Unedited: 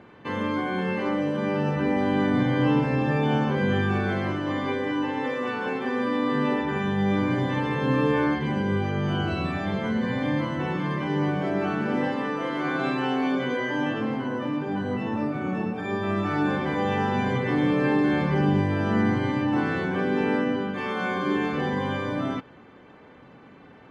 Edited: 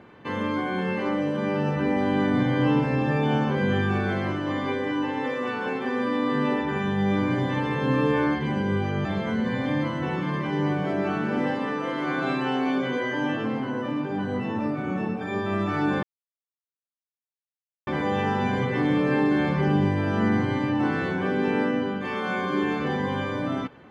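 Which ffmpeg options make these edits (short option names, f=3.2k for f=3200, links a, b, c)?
-filter_complex "[0:a]asplit=3[a][b][c];[a]atrim=end=9.052[d];[b]atrim=start=9.618:end=16.6,asetpts=PTS-STARTPTS,afade=t=out:st=6.978:d=0.004:c=hsin,apad=pad_dur=1.84[e];[c]atrim=start=16.6,asetpts=PTS-STARTPTS,afade=t=in:d=0.004:c=hsin[f];[e][f]concat=n=2:v=0:a=1[g];[d][g]acrossfade=d=0.004:c1=hsin:c2=hsin"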